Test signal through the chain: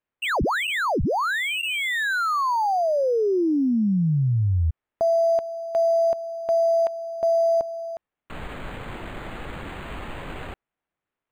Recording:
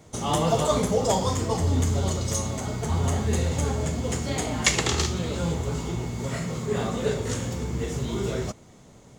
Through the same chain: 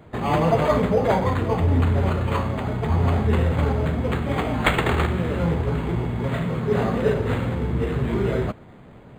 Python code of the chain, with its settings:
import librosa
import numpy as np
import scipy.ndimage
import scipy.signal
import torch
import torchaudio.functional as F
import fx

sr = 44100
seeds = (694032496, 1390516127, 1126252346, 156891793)

p1 = fx.rider(x, sr, range_db=3, speed_s=2.0)
p2 = x + F.gain(torch.from_numpy(p1), -3.0).numpy()
p3 = 10.0 ** (-3.0 / 20.0) * np.tanh(p2 / 10.0 ** (-3.0 / 20.0))
y = np.interp(np.arange(len(p3)), np.arange(len(p3))[::8], p3[::8])